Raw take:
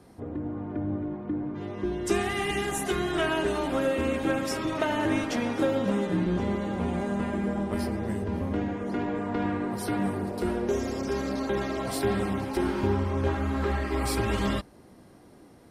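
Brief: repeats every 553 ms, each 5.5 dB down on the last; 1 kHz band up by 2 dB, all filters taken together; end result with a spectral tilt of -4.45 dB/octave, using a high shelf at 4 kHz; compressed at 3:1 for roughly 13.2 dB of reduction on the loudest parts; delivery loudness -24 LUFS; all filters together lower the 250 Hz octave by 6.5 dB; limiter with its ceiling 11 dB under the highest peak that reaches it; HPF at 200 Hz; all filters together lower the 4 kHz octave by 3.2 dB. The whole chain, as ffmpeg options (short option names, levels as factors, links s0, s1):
-af "highpass=200,equalizer=f=250:t=o:g=-7,equalizer=f=1000:t=o:g=3,highshelf=f=4000:g=6.5,equalizer=f=4000:t=o:g=-9,acompressor=threshold=0.00891:ratio=3,alimiter=level_in=3.98:limit=0.0631:level=0:latency=1,volume=0.251,aecho=1:1:553|1106|1659|2212|2765|3318|3871:0.531|0.281|0.149|0.079|0.0419|0.0222|0.0118,volume=9.44"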